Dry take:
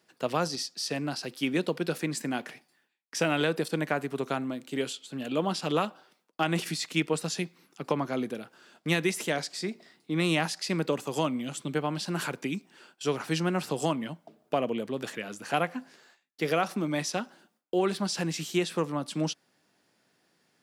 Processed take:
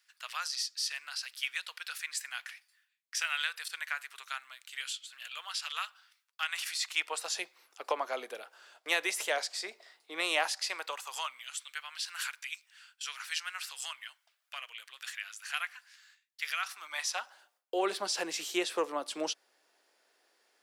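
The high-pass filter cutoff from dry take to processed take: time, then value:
high-pass filter 24 dB per octave
0:06.47 1,400 Hz
0:07.40 540 Hz
0:10.42 540 Hz
0:11.59 1,500 Hz
0:16.54 1,500 Hz
0:17.91 400 Hz

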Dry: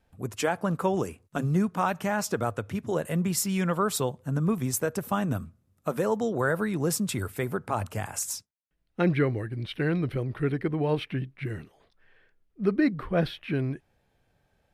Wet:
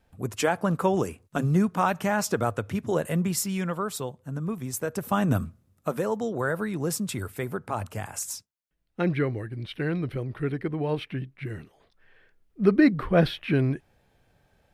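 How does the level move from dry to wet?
0:03.05 +2.5 dB
0:03.95 −5 dB
0:04.66 −5 dB
0:05.43 +7 dB
0:06.07 −1.5 dB
0:11.45 −1.5 dB
0:12.62 +5 dB

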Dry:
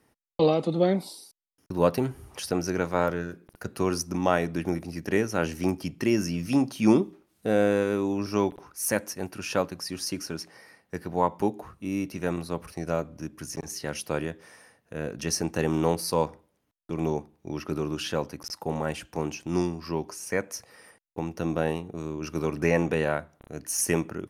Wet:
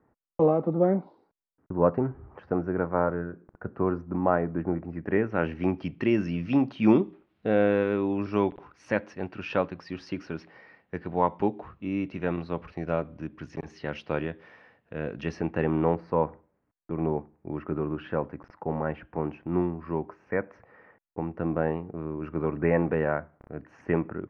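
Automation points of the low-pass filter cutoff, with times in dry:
low-pass filter 24 dB per octave
0:04.70 1,500 Hz
0:05.86 3,200 Hz
0:15.15 3,200 Hz
0:16.05 1,900 Hz

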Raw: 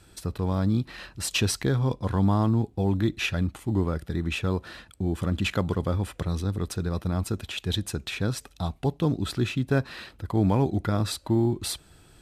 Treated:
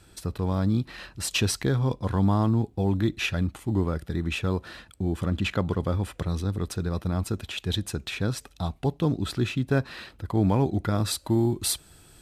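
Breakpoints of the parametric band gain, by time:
parametric band 12,000 Hz 1.8 octaves
0:05.06 0 dB
0:05.57 −7.5 dB
0:05.93 −1 dB
0:10.80 −1 dB
0:11.22 +7.5 dB

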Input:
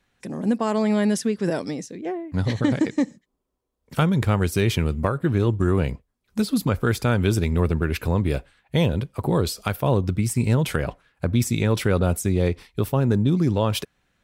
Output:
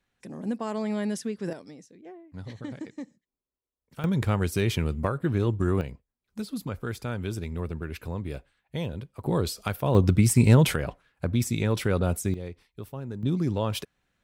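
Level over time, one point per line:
−8.5 dB
from 0:01.53 −16.5 dB
from 0:04.04 −4.5 dB
from 0:05.81 −11.5 dB
from 0:09.26 −4.5 dB
from 0:09.95 +3 dB
from 0:10.74 −4.5 dB
from 0:12.34 −16 dB
from 0:13.23 −6 dB

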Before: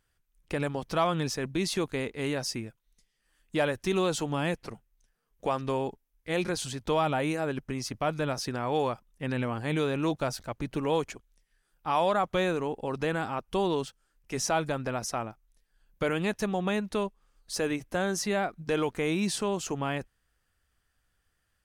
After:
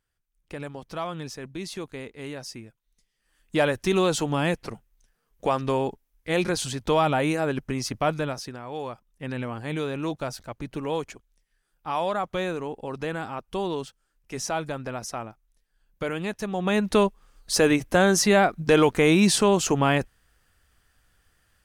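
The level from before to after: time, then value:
0:02.65 −5.5 dB
0:03.59 +5 dB
0:08.10 +5 dB
0:08.64 −7.5 dB
0:09.23 −1 dB
0:16.47 −1 dB
0:16.90 +10 dB

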